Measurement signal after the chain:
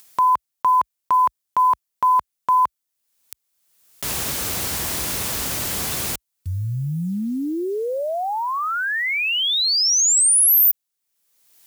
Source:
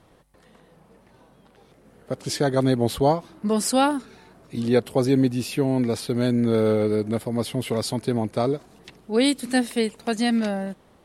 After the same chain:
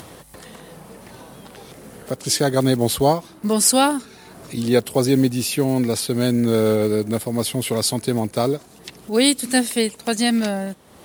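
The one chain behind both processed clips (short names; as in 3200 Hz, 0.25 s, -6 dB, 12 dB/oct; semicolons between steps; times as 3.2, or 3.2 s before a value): block floating point 7-bit; HPF 53 Hz 24 dB/oct; high shelf 4600 Hz +11 dB; upward compressor, threshold -32 dBFS; gain +2.5 dB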